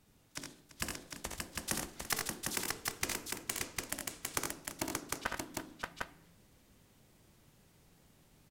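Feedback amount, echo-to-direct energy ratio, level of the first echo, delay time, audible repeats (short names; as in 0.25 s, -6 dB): no steady repeat, 1.5 dB, -6.5 dB, 63 ms, 4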